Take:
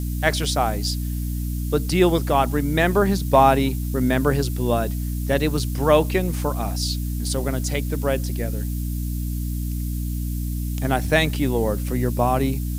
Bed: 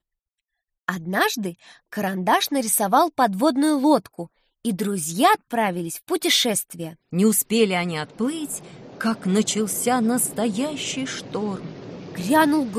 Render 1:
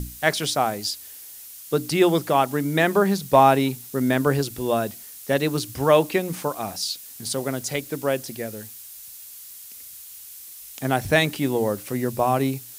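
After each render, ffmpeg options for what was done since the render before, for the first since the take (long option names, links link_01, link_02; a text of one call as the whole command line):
ffmpeg -i in.wav -af "bandreject=frequency=60:width_type=h:width=6,bandreject=frequency=120:width_type=h:width=6,bandreject=frequency=180:width_type=h:width=6,bandreject=frequency=240:width_type=h:width=6,bandreject=frequency=300:width_type=h:width=6" out.wav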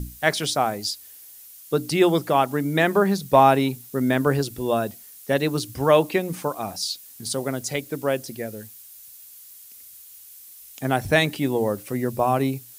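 ffmpeg -i in.wav -af "afftdn=noise_reduction=6:noise_floor=-42" out.wav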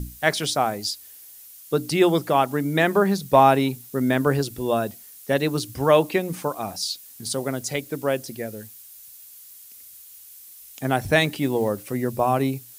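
ffmpeg -i in.wav -filter_complex "[0:a]asplit=3[link_01][link_02][link_03];[link_01]afade=type=out:start_time=11.2:duration=0.02[link_04];[link_02]acrusher=bits=8:mode=log:mix=0:aa=0.000001,afade=type=in:start_time=11.2:duration=0.02,afade=type=out:start_time=11.68:duration=0.02[link_05];[link_03]afade=type=in:start_time=11.68:duration=0.02[link_06];[link_04][link_05][link_06]amix=inputs=3:normalize=0" out.wav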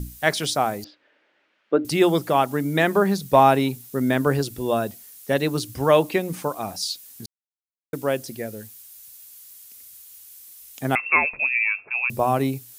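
ffmpeg -i in.wav -filter_complex "[0:a]asettb=1/sr,asplit=3[link_01][link_02][link_03];[link_01]atrim=end=0.844[link_04];[link_02]atrim=start=0.84:end=1.85,asetpts=PTS-STARTPTS,afade=type=in:duration=0.004:curve=qsin,afade=type=out:start_time=1.006:duration=0.004:curve=qsin,highpass=280,equalizer=frequency=310:width_type=q:width=4:gain=9,equalizer=frequency=580:width_type=q:width=4:gain=9,equalizer=frequency=1500:width_type=q:width=4:gain=4,lowpass=frequency=2500:width=0.5412,lowpass=frequency=2500:width=1.3066[link_05];[link_03]atrim=start=1.846[link_06];[link_04][link_05]acrossfade=duration=0.004:curve1=hsin:curve2=qsin[link_07];[link_07][link_06]acrossfade=duration=0.004:curve1=qsin:curve2=hsin,asettb=1/sr,asplit=3[link_08][link_09][link_10];[link_08]atrim=end=10.954[link_11];[link_09]atrim=start=10.95:end=12.1,asetpts=PTS-STARTPTS,afade=type=in:duration=0.004:curve=qsin,afade=type=out:start_time=1.146:duration=0.004:curve=qsin,lowpass=frequency=2400:width_type=q:width=0.5098,lowpass=frequency=2400:width_type=q:width=0.6013,lowpass=frequency=2400:width_type=q:width=0.9,lowpass=frequency=2400:width_type=q:width=2.563,afreqshift=-2800[link_12];[link_10]atrim=start=12.096[link_13];[link_11][link_12]acrossfade=duration=0.004:curve1=hsin:curve2=qsin[link_14];[link_14][link_13]acrossfade=duration=0.004:curve1=qsin:curve2=hsin,asplit=3[link_15][link_16][link_17];[link_15]atrim=end=7.26,asetpts=PTS-STARTPTS,afade=type=out:start_time=7.256:duration=0.004:curve=hsin[link_18];[link_16]atrim=start=7.26:end=7.93,asetpts=PTS-STARTPTS,volume=0[link_19];[link_17]atrim=start=7.93,asetpts=PTS-STARTPTS,afade=type=in:duration=0.004:curve=hsin[link_20];[link_18][link_19][link_20]concat=n=3:v=0:a=1" out.wav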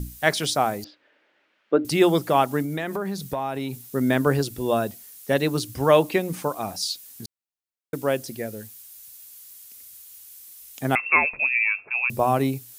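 ffmpeg -i in.wav -filter_complex "[0:a]asettb=1/sr,asplit=3[link_01][link_02][link_03];[link_01]atrim=end=2.624[link_04];[link_02]atrim=start=2.62:end=3.82,asetpts=PTS-STARTPTS,afade=type=in:duration=0.004:curve=qsin,afade=type=out:start_time=1.196:duration=0.004:curve=qsin,acompressor=threshold=-25dB:ratio=5:attack=3.2:release=140:knee=1:detection=peak[link_05];[link_03]atrim=start=3.816[link_06];[link_04][link_05]acrossfade=duration=0.004:curve1=hsin:curve2=qsin[link_07];[link_07][link_06]acrossfade=duration=0.004:curve1=qsin:curve2=hsin" out.wav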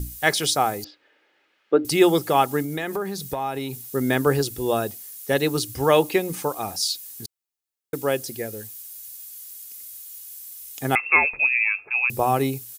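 ffmpeg -i in.wav -af "highshelf=frequency=4600:gain=5.5,aecho=1:1:2.4:0.32" out.wav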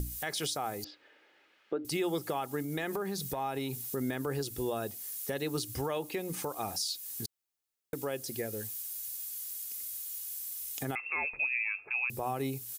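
ffmpeg -i in.wav -af "acompressor=threshold=-34dB:ratio=2.5,alimiter=limit=-23.5dB:level=0:latency=1:release=48" out.wav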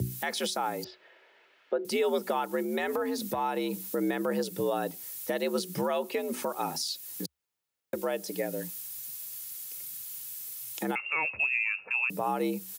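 ffmpeg -i in.wav -filter_complex "[0:a]asplit=2[link_01][link_02];[link_02]adynamicsmooth=sensitivity=1:basefreq=5200,volume=-3dB[link_03];[link_01][link_03]amix=inputs=2:normalize=0,afreqshift=68" out.wav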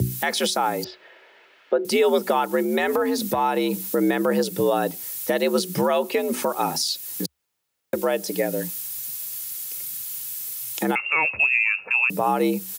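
ffmpeg -i in.wav -af "volume=8.5dB" out.wav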